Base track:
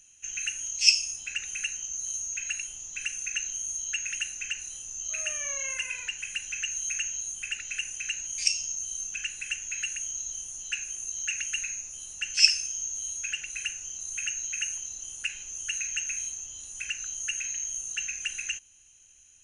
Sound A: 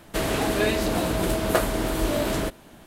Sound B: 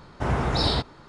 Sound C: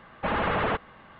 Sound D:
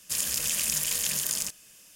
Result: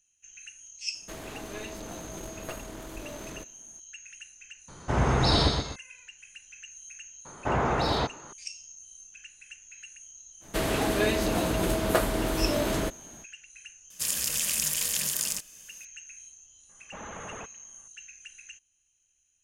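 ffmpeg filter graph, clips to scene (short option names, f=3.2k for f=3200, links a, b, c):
-filter_complex "[1:a]asplit=2[a][b];[2:a]asplit=2[c][d];[0:a]volume=-14.5dB[e];[a]aeval=exprs='clip(val(0),-1,0.0447)':c=same[f];[c]aecho=1:1:122|244|366|488:0.596|0.197|0.0649|0.0214[g];[d]asplit=2[h][i];[i]highpass=f=720:p=1,volume=15dB,asoftclip=type=tanh:threshold=-10.5dB[j];[h][j]amix=inputs=2:normalize=0,lowpass=f=1k:p=1,volume=-6dB[k];[f]atrim=end=2.86,asetpts=PTS-STARTPTS,volume=-14.5dB,afade=t=in:d=0.004:c=hsin,afade=t=out:st=2.856:d=0.004:c=hsin,adelay=940[l];[g]atrim=end=1.08,asetpts=PTS-STARTPTS,volume=-0.5dB,afade=t=in:d=0.004:c=hsin,afade=t=out:st=1.076:d=0.004:c=hsin,adelay=4680[m];[k]atrim=end=1.08,asetpts=PTS-STARTPTS,volume=-2dB,afade=t=in:d=0.004:c=hsin,afade=t=out:st=1.076:d=0.004:c=hsin,adelay=7250[n];[b]atrim=end=2.86,asetpts=PTS-STARTPTS,volume=-2.5dB,afade=t=in:d=0.05,afade=t=out:st=2.81:d=0.05,adelay=10400[o];[4:a]atrim=end=1.95,asetpts=PTS-STARTPTS,volume=-0.5dB,afade=t=in:d=0.004:c=hsin,afade=t=out:st=1.946:d=0.004:c=hsin,adelay=13900[p];[3:a]atrim=end=1.19,asetpts=PTS-STARTPTS,volume=-15.5dB,afade=t=in:d=0.004:c=hsin,afade=t=out:st=1.186:d=0.004:c=hsin,adelay=16690[q];[e][l][m][n][o][p][q]amix=inputs=7:normalize=0"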